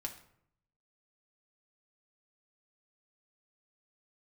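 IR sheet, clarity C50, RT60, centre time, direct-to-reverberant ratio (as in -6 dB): 10.5 dB, 0.70 s, 12 ms, 1.5 dB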